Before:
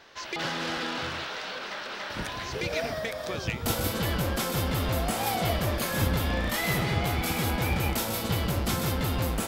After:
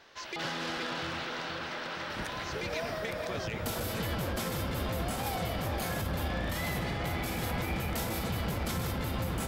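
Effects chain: dark delay 0.47 s, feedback 73%, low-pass 2200 Hz, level -5 dB; limiter -20.5 dBFS, peak gain reduction 9 dB; gain -4 dB

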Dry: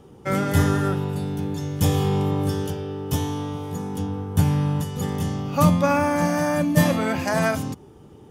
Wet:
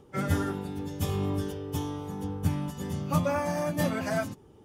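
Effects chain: plain phase-vocoder stretch 0.56×; gain -4.5 dB

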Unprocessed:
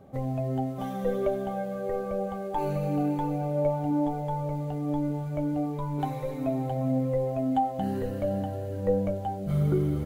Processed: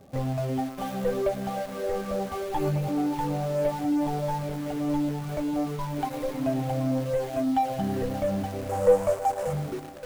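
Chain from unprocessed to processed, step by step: ending faded out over 1.11 s; 5.76–6.28 bell 130 Hz -2.5 dB 2.7 oct; on a send: analogue delay 0.575 s, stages 4096, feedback 77%, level -17 dB; on the sum: crackle 210/s -47 dBFS; 2.31–2.88 doubler 13 ms -2.5 dB; reverb removal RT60 1 s; in parallel at -12 dB: companded quantiser 2-bit; 8.69–9.53 on the sum: graphic EQ 250/500/1000/4000/8000 Hz -11/+7/+9/-6/+10 dB; lo-fi delay 0.106 s, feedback 80%, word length 7-bit, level -14.5 dB

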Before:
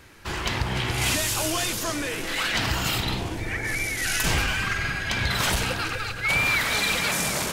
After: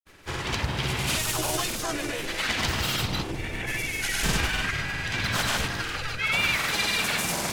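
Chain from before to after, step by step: harmoniser +3 st -5 dB, +7 st -10 dB; grains, pitch spread up and down by 0 st; gain -2 dB

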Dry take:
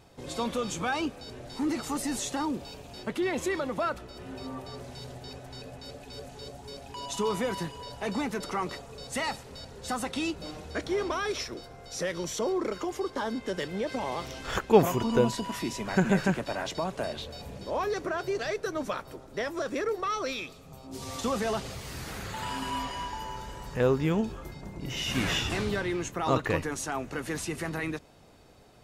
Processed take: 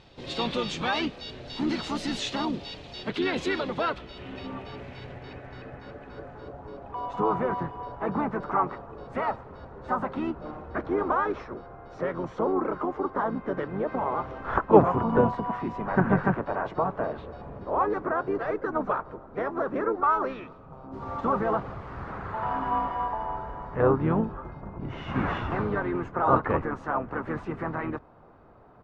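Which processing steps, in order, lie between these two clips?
low-pass sweep 3900 Hz -> 1200 Hz, 3.62–6.77; harmoniser -12 st -17 dB, -5 st -6 dB, +3 st -13 dB

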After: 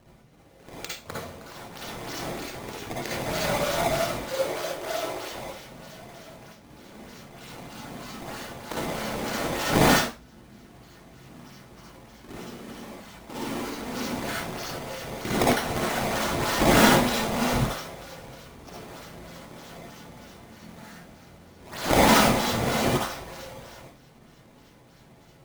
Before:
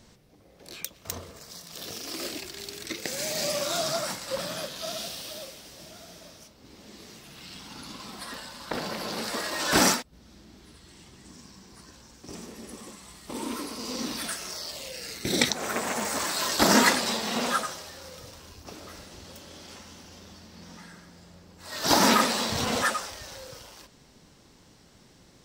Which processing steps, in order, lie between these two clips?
decimation with a swept rate 18×, swing 160% 3.2 Hz; 4.26–5.32 resonant low shelf 280 Hz -7 dB, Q 3; reverb RT60 0.35 s, pre-delay 47 ms, DRR -4.5 dB; gain -3 dB

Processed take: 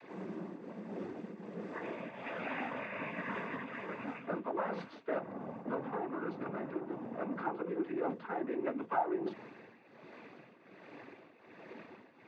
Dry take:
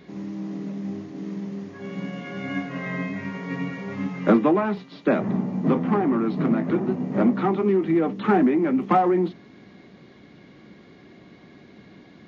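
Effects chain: tremolo triangle 1.3 Hz, depth 80%; reverse; compressor 6:1, threshold -34 dBFS, peak gain reduction 15 dB; reverse; three-band isolator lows -16 dB, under 380 Hz, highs -15 dB, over 2200 Hz; noise vocoder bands 16; gain +5.5 dB

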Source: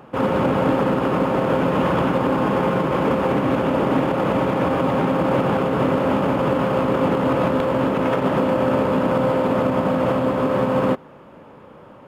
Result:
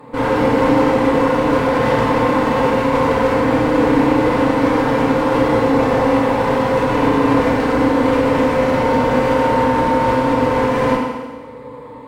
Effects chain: ripple EQ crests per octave 0.99, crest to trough 13 dB; one-sided clip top -29.5 dBFS, bottom -11 dBFS; FDN reverb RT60 1.3 s, low-frequency decay 0.95×, high-frequency decay 1×, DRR -5 dB; gain -1 dB

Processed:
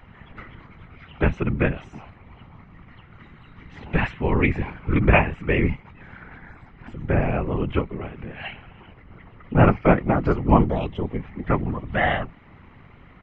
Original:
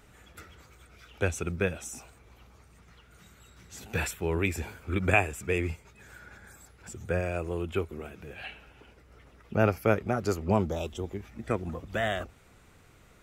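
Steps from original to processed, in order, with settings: LPF 2700 Hz 24 dB/oct; comb 1 ms, depth 42%; whisperiser; gain +8.5 dB

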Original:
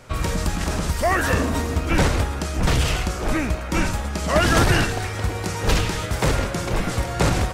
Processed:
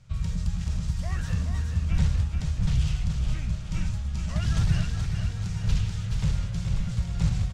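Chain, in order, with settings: EQ curve 170 Hz 0 dB, 290 Hz -24 dB, 1900 Hz -17 dB, 3300 Hz -11 dB, 6900 Hz -11 dB, 12000 Hz -23 dB; on a send: feedback echo 0.426 s, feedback 54%, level -6.5 dB; on the sum: gain -3 dB

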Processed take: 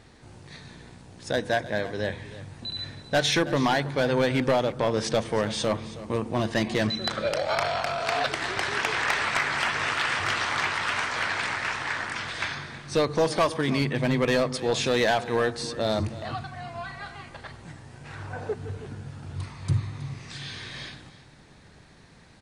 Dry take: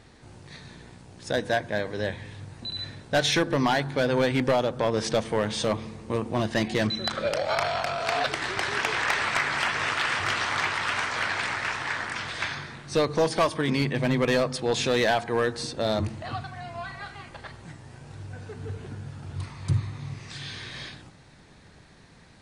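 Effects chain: 18.04–18.53 bell 2300 Hz -> 510 Hz +14 dB 2 oct; echo 0.321 s -16.5 dB

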